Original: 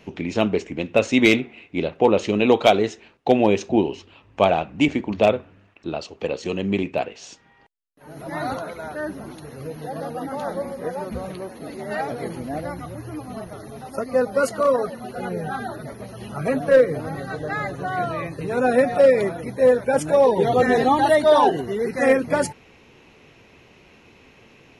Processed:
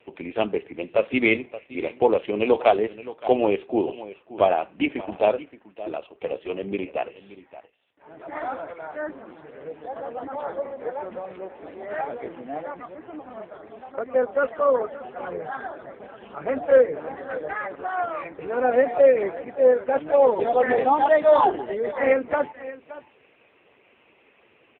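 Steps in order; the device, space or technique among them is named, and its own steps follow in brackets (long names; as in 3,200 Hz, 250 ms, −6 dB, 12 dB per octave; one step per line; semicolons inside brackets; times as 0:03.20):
satellite phone (band-pass filter 350–3,400 Hz; single-tap delay 573 ms −16.5 dB; AMR narrowband 5.15 kbit/s 8,000 Hz)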